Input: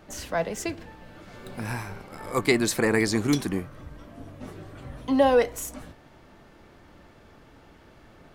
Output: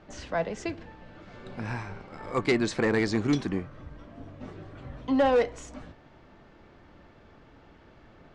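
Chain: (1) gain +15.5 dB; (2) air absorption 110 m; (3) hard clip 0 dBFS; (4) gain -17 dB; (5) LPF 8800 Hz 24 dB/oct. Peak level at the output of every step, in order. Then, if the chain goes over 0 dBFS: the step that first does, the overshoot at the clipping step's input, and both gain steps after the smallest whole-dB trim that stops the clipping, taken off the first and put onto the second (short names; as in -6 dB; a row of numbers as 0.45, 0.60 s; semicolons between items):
+7.5, +7.0, 0.0, -17.0, -16.0 dBFS; step 1, 7.0 dB; step 1 +8.5 dB, step 4 -10 dB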